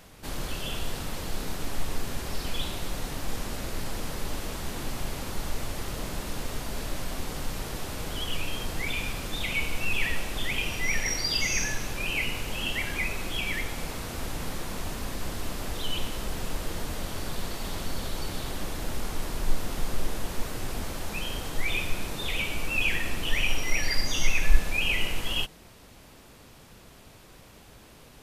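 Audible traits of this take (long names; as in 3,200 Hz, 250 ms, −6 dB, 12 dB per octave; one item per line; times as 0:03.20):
background noise floor −51 dBFS
spectral slope −3.5 dB per octave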